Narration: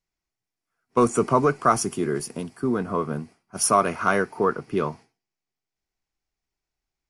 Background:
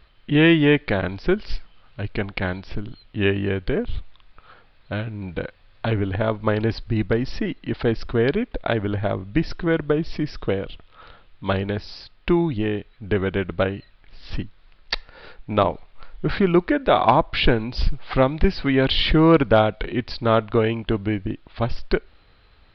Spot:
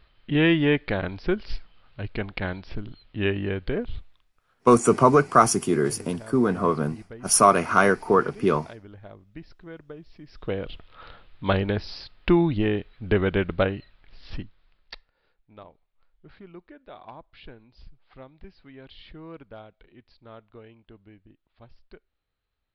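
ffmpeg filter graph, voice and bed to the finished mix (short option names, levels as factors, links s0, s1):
-filter_complex "[0:a]adelay=3700,volume=1.41[s0];[1:a]volume=6.68,afade=t=out:st=3.8:d=0.51:silence=0.149624,afade=t=in:st=10.26:d=0.56:silence=0.0891251,afade=t=out:st=13.41:d=1.72:silence=0.0421697[s1];[s0][s1]amix=inputs=2:normalize=0"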